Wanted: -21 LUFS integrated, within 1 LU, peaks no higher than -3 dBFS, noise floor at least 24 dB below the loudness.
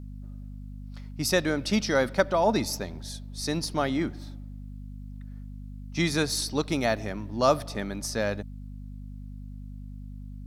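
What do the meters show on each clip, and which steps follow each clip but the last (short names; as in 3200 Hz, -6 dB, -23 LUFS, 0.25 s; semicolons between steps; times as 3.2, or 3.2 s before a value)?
hum 50 Hz; harmonics up to 250 Hz; hum level -38 dBFS; loudness -27.5 LUFS; peak -8.0 dBFS; loudness target -21.0 LUFS
-> de-hum 50 Hz, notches 5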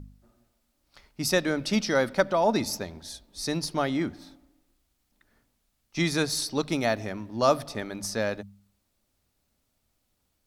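hum none; loudness -27.5 LUFS; peak -8.0 dBFS; loudness target -21.0 LUFS
-> gain +6.5 dB; limiter -3 dBFS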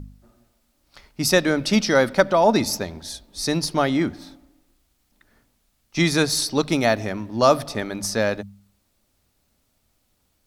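loudness -21.0 LUFS; peak -3.0 dBFS; noise floor -69 dBFS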